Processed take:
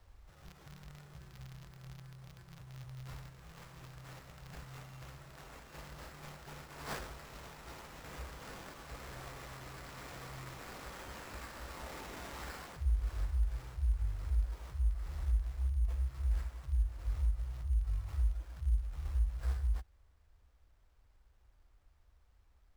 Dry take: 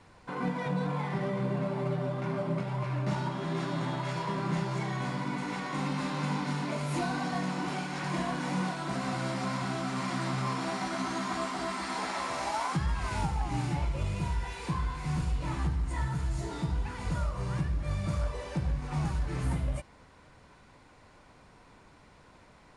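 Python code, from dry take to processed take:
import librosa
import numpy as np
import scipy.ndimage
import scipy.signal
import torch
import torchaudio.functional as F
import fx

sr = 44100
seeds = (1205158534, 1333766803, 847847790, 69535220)

p1 = fx.rattle_buzz(x, sr, strikes_db=-32.0, level_db=-34.0)
p2 = scipy.signal.sosfilt(scipy.signal.cheby2(4, 70, [280.0, 3200.0], 'bandstop', fs=sr, output='sos'), p1)
p3 = fx.low_shelf(p2, sr, hz=390.0, db=-8.5)
p4 = fx.rider(p3, sr, range_db=10, speed_s=0.5)
p5 = p3 + (p4 * 10.0 ** (2.0 / 20.0))
p6 = fx.sample_hold(p5, sr, seeds[0], rate_hz=9400.0, jitter_pct=0)
y = p6 * 10.0 ** (3.0 / 20.0)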